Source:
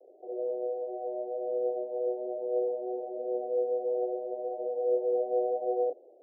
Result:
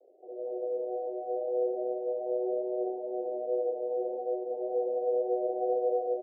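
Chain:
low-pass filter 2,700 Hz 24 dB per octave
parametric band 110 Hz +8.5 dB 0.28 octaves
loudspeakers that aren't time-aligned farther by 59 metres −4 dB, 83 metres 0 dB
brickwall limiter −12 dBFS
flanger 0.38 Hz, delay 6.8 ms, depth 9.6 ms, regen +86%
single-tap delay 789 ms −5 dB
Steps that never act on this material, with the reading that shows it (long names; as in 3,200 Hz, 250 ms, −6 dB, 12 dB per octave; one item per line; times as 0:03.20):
low-pass filter 2,700 Hz: nothing at its input above 760 Hz
parametric band 110 Hz: nothing at its input below 360 Hz
brickwall limiter −12 dBFS: peak of its input −15.5 dBFS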